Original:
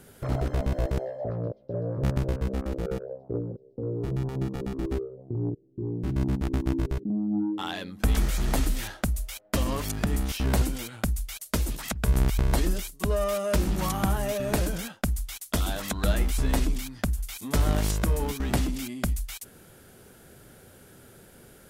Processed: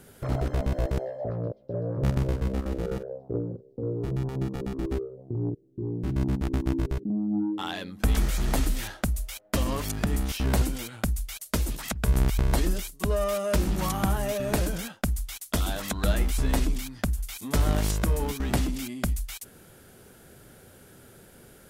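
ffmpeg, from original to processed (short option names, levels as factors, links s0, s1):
-filter_complex "[0:a]asettb=1/sr,asplit=3[s0][s1][s2];[s0]atrim=end=1.864[s3];[s1]atrim=start=1.86:end=3.93,asetpts=PTS-STARTPTS,afade=t=in:d=0.004:c=qsin,afade=t=out:st=2.066:d=0.004:c=qsin,asplit=2[s4][s5];[s5]adelay=45,volume=0.266[s6];[s4][s6]amix=inputs=2:normalize=0,atrim=end_sample=91287[s7];[s2]atrim=start=3.926[s8];[s3][s7]acrossfade=d=0.004:c1=hsin:c2=qsin[s9];[s9][s8]acrossfade=d=0.004:c1=qsin:c2=hsin"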